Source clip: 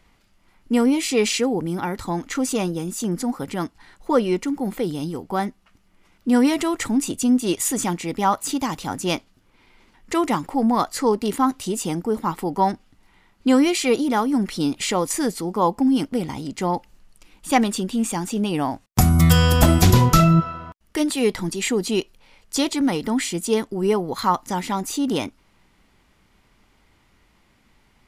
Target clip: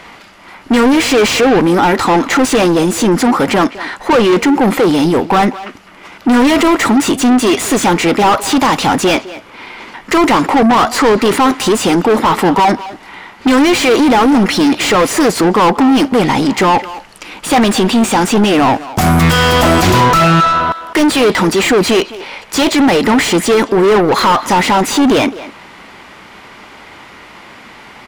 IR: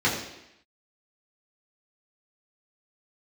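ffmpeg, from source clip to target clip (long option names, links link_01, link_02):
-filter_complex "[0:a]asplit=2[link_01][link_02];[link_02]highpass=frequency=720:poles=1,volume=37dB,asoftclip=type=tanh:threshold=-1.5dB[link_03];[link_01][link_03]amix=inputs=2:normalize=0,lowpass=frequency=2000:poles=1,volume=-6dB,asplit=2[link_04][link_05];[link_05]adelay=210,highpass=300,lowpass=3400,asoftclip=type=hard:threshold=-10.5dB,volume=-13dB[link_06];[link_04][link_06]amix=inputs=2:normalize=0"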